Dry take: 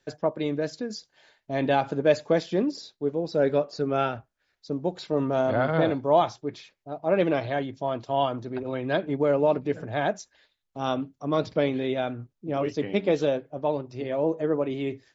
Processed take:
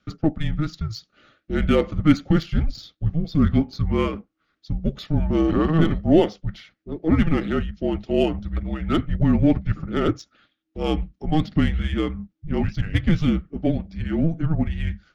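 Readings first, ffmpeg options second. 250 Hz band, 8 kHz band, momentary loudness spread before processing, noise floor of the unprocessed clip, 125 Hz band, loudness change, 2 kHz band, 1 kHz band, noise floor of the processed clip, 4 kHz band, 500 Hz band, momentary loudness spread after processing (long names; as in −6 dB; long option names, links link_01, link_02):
+8.0 dB, can't be measured, 10 LU, −77 dBFS, +11.5 dB, +4.0 dB, +1.0 dB, −4.0 dB, −75 dBFS, +3.0 dB, −2.5 dB, 10 LU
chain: -af "bandreject=frequency=1300:width=5.5,adynamicsmooth=sensitivity=6:basefreq=4600,afreqshift=-320,volume=5dB"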